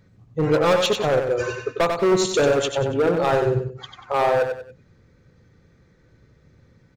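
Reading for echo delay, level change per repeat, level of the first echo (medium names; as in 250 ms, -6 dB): 94 ms, -9.5 dB, -6.0 dB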